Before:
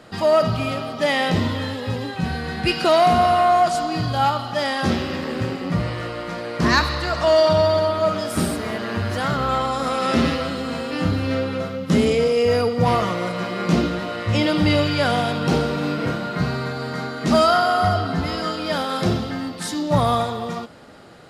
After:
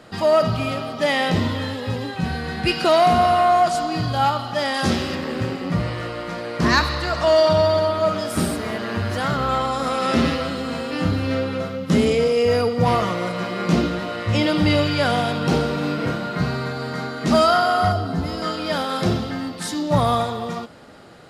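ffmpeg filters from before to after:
-filter_complex "[0:a]asettb=1/sr,asplit=3[s0][s1][s2];[s0]atrim=end=4.744[s3];[s1]atrim=start=4.74:end=5.15,asetpts=PTS-STARTPTS,afade=t=in:d=0.004:c=qsin,afade=t=out:st=0.406:d=0.004:c=qsin,equalizer=f=8600:t=o:w=1.8:g=7[s4];[s2]atrim=start=5.146[s5];[s3][s4]acrossfade=d=0.004:c1=hsin:c2=qsin[s6];[s6][s5]acrossfade=d=0.004:c1=qsin:c2=hsin,asettb=1/sr,asplit=3[s7][s8][s9];[s7]atrim=end=17.924[s10];[s8]atrim=start=17.92:end=18.42,asetpts=PTS-STARTPTS,afade=t=in:d=0.004:c=qsin,afade=t=out:st=0.496:d=0.004:c=qsin,equalizer=f=2200:w=0.5:g=-7[s11];[s9]atrim=start=18.416[s12];[s10][s11]acrossfade=d=0.004:c1=hsin:c2=qsin[s13];[s13][s12]acrossfade=d=0.004:c1=qsin:c2=hsin"

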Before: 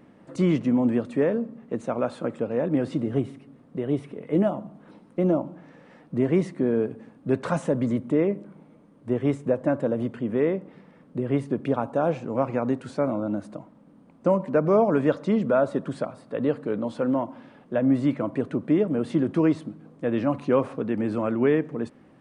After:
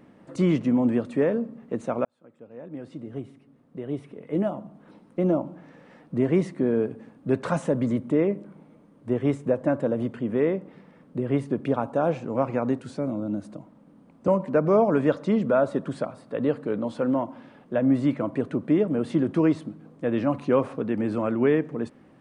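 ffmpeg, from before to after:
-filter_complex "[0:a]asettb=1/sr,asplit=3[s0][s1][s2];[s0]atrim=end=12.794[s3];[s1]atrim=start=12.79:end=14.28,asetpts=PTS-STARTPTS,afade=t=in:d=0.004:c=qsin,afade=t=out:st=1.486:d=0.004:c=qsin,acrossover=split=450|3000[s4][s5][s6];[s5]acompressor=threshold=0.00126:ratio=1.5:attack=3.2:release=140:knee=2.83:detection=peak[s7];[s4][s7][s6]amix=inputs=3:normalize=0[s8];[s2]atrim=start=14.276[s9];[s3][s8]acrossfade=d=0.004:c1=hsin:c2=qsin[s10];[s10][s9]acrossfade=d=0.004:c1=qsin:c2=hsin,asplit=2[s11][s12];[s11]atrim=end=2.05,asetpts=PTS-STARTPTS,afade=t=out:st=2.046:d=0.004:c=hsin[s13];[s12]atrim=start=2.05,asetpts=PTS-STARTPTS,afade=t=in:d=3.47[s14];[s13][s14]concat=n=2:v=0:a=1"

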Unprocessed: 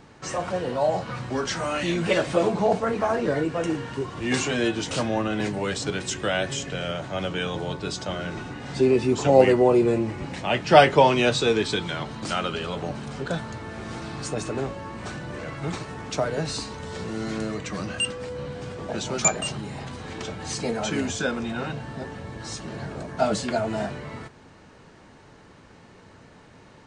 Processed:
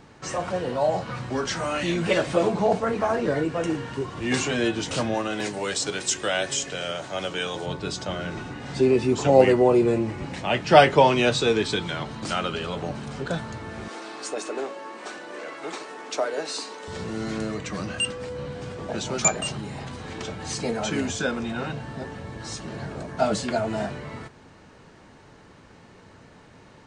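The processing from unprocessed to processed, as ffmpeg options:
-filter_complex "[0:a]asettb=1/sr,asplit=3[s0][s1][s2];[s0]atrim=end=5.144[s3];[s1]atrim=start=5.14:end=7.66,asetpts=PTS-STARTPTS,afade=t=in:d=0.004:c=qsin,afade=t=out:st=2.516:d=0.004:c=qsin,bass=f=250:g=-9,treble=f=4000:g=7[s4];[s2]atrim=start=7.656[s5];[s3][s4]acrossfade=d=0.004:c1=hsin:c2=qsin[s6];[s6][s5]acrossfade=d=0.004:c1=qsin:c2=hsin,asettb=1/sr,asplit=3[s7][s8][s9];[s7]atrim=end=13.884[s10];[s8]atrim=start=13.88:end=16.88,asetpts=PTS-STARTPTS,afade=t=in:d=0.004:c=qsin,afade=t=out:st=2.996:d=0.004:c=qsin,highpass=f=310:w=0.5412,highpass=f=310:w=1.3066[s11];[s9]atrim=start=16.876[s12];[s10][s11]acrossfade=d=0.004:c1=hsin:c2=qsin[s13];[s13][s12]acrossfade=d=0.004:c1=qsin:c2=hsin"

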